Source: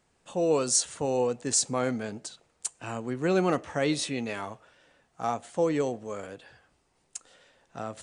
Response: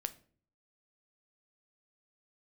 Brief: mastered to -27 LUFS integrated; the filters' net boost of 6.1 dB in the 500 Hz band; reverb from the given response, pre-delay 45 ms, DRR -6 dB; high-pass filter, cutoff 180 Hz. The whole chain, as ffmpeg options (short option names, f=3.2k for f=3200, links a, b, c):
-filter_complex "[0:a]highpass=180,equalizer=f=500:t=o:g=7,asplit=2[a][b];[1:a]atrim=start_sample=2205,adelay=45[c];[b][c]afir=irnorm=-1:irlink=0,volume=7dB[d];[a][d]amix=inputs=2:normalize=0,volume=-10dB"